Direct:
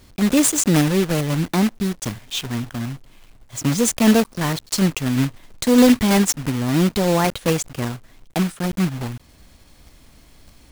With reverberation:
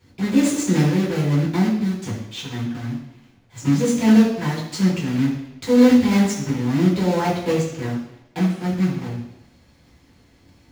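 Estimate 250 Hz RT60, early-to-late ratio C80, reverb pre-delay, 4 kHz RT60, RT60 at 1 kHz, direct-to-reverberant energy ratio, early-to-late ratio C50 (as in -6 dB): 0.85 s, 7.0 dB, 3 ms, 0.85 s, 0.85 s, -9.0 dB, 5.0 dB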